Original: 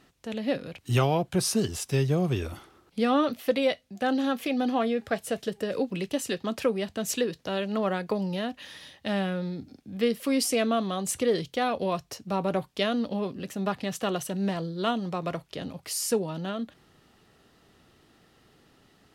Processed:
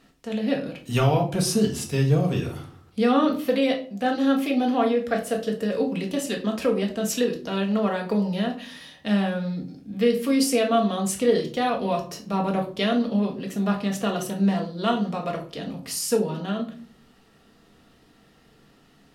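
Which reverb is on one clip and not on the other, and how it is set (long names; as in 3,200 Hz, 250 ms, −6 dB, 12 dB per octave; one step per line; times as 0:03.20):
rectangular room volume 350 cubic metres, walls furnished, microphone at 1.7 metres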